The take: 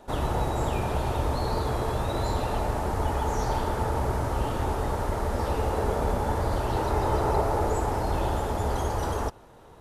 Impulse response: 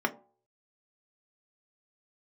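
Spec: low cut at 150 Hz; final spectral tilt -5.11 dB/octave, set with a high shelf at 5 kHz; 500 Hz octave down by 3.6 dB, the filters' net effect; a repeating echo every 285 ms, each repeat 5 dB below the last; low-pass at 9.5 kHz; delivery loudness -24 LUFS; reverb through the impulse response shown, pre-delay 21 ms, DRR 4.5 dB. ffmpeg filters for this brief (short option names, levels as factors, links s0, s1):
-filter_complex "[0:a]highpass=150,lowpass=9500,equalizer=f=500:t=o:g=-4.5,highshelf=f=5000:g=3,aecho=1:1:285|570|855|1140|1425|1710|1995:0.562|0.315|0.176|0.0988|0.0553|0.031|0.0173,asplit=2[s0][s1];[1:a]atrim=start_sample=2205,adelay=21[s2];[s1][s2]afir=irnorm=-1:irlink=0,volume=0.188[s3];[s0][s3]amix=inputs=2:normalize=0,volume=1.68"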